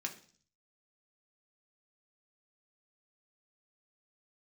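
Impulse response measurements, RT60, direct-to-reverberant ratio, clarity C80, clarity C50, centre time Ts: 0.45 s, 1.5 dB, 16.5 dB, 12.5 dB, 12 ms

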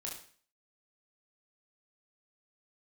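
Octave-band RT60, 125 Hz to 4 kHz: 0.50, 0.50, 0.45, 0.45, 0.50, 0.45 seconds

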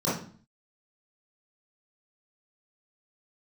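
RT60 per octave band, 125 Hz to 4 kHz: 0.60, 0.60, 0.45, 0.45, 0.40, 0.40 seconds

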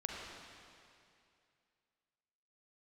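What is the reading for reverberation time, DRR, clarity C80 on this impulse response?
2.5 s, −1.5 dB, 0.5 dB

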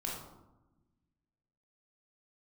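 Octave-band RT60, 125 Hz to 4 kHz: 1.9, 1.7, 1.1, 1.0, 0.70, 0.50 seconds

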